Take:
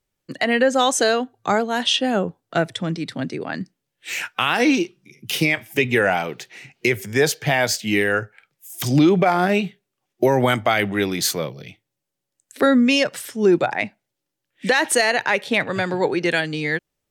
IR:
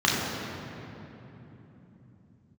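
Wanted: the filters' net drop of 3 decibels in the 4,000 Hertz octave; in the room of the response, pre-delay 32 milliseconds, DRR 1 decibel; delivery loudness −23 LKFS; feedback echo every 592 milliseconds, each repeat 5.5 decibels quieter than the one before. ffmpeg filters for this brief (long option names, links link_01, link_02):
-filter_complex "[0:a]equalizer=frequency=4000:width_type=o:gain=-4,aecho=1:1:592|1184|1776|2368|2960|3552|4144:0.531|0.281|0.149|0.079|0.0419|0.0222|0.0118,asplit=2[link_01][link_02];[1:a]atrim=start_sample=2205,adelay=32[link_03];[link_02][link_03]afir=irnorm=-1:irlink=0,volume=-18.5dB[link_04];[link_01][link_04]amix=inputs=2:normalize=0,volume=-7dB"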